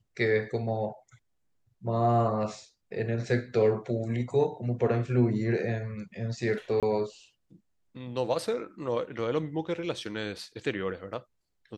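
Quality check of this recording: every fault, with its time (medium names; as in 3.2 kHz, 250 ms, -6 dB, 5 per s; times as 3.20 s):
6.80–6.83 s: dropout 27 ms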